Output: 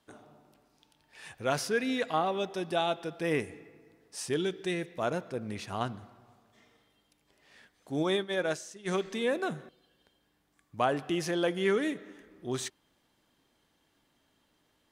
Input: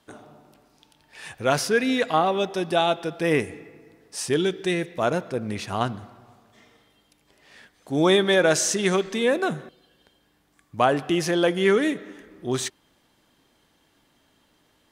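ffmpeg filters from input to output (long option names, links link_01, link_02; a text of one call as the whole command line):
ffmpeg -i in.wav -filter_complex "[0:a]asplit=3[link_01][link_02][link_03];[link_01]afade=type=out:start_time=8.02:duration=0.02[link_04];[link_02]agate=range=-33dB:threshold=-13dB:ratio=3:detection=peak,afade=type=in:start_time=8.02:duration=0.02,afade=type=out:start_time=8.87:duration=0.02[link_05];[link_03]afade=type=in:start_time=8.87:duration=0.02[link_06];[link_04][link_05][link_06]amix=inputs=3:normalize=0,volume=-8dB" out.wav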